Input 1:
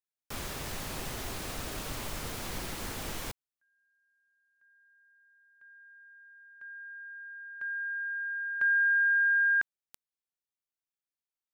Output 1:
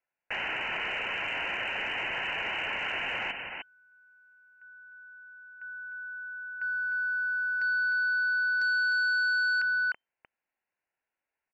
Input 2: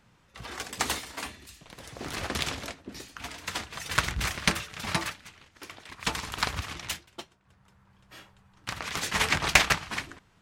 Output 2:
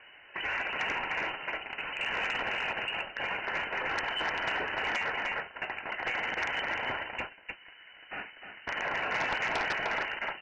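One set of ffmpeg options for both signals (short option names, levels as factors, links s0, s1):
-af "aeval=exprs='if(lt(val(0),0),0.708*val(0),val(0))':c=same,highpass=f=330:p=1,equalizer=f=1800:w=0.66:g=3,bandreject=f=1900:w=6.8,aecho=1:1:303:0.376,acompressor=threshold=0.02:ratio=2.5:attack=0.63:release=69:knee=1:detection=rms,lowpass=f=2600:t=q:w=0.5098,lowpass=f=2600:t=q:w=0.6013,lowpass=f=2600:t=q:w=0.9,lowpass=f=2600:t=q:w=2.563,afreqshift=-3100,aeval=exprs='0.0891*sin(PI/2*2.82*val(0)/0.0891)':c=same,alimiter=level_in=1.12:limit=0.0631:level=0:latency=1:release=14,volume=0.891"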